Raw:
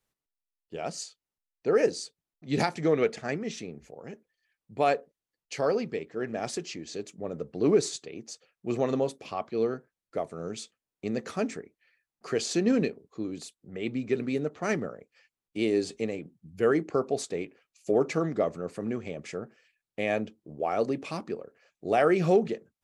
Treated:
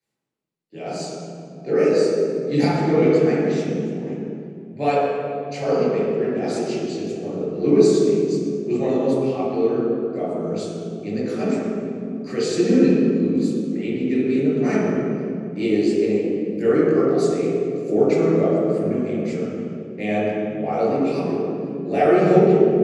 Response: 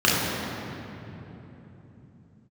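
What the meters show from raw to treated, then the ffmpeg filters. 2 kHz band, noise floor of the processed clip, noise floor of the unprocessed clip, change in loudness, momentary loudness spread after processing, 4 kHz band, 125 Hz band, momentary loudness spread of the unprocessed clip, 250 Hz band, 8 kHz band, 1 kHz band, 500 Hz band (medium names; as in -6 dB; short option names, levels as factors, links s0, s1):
+4.0 dB, -37 dBFS, under -85 dBFS, +9.0 dB, 12 LU, +3.5 dB, +11.0 dB, 17 LU, +12.0 dB, +1.0 dB, +6.5 dB, +9.5 dB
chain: -filter_complex "[1:a]atrim=start_sample=2205,asetrate=70560,aresample=44100[s0];[0:a][s0]afir=irnorm=-1:irlink=0,volume=0.237"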